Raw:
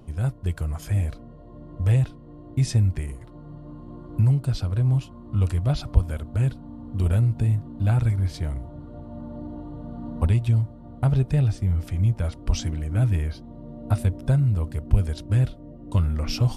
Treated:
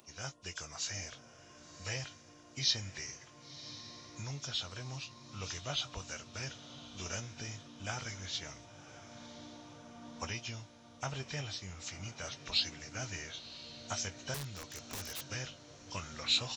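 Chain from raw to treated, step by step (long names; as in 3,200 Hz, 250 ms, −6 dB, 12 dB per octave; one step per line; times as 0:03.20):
hearing-aid frequency compression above 2,200 Hz 1.5 to 1
first difference
double-tracking delay 21 ms −12.5 dB
feedback delay with all-pass diffusion 1,048 ms, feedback 52%, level −14 dB
0:14.34–0:15.22: wrap-around overflow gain 46 dB
level +10.5 dB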